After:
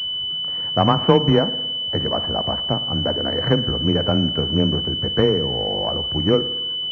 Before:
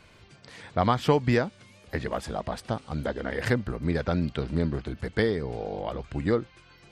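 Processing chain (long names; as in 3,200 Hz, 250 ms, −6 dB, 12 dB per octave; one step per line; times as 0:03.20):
frequency shifter +16 Hz
spring reverb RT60 1 s, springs 55 ms, chirp 50 ms, DRR 13.5 dB
switching amplifier with a slow clock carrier 3,000 Hz
level +7 dB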